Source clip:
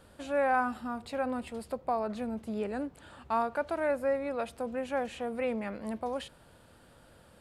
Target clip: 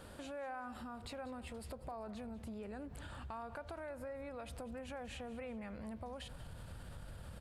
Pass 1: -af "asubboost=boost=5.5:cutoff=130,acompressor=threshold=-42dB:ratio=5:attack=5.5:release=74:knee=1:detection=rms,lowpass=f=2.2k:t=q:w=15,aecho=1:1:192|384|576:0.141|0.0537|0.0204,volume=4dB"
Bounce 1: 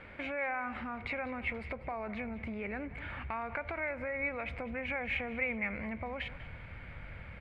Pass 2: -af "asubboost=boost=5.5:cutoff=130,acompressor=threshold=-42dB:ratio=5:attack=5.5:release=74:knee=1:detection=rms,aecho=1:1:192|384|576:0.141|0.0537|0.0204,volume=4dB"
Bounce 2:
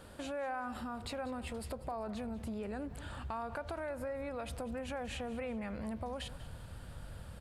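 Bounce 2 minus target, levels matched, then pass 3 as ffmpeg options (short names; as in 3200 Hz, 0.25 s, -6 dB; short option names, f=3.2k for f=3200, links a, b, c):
compressor: peak gain reduction -6 dB
-af "asubboost=boost=5.5:cutoff=130,acompressor=threshold=-49.5dB:ratio=5:attack=5.5:release=74:knee=1:detection=rms,aecho=1:1:192|384|576:0.141|0.0537|0.0204,volume=4dB"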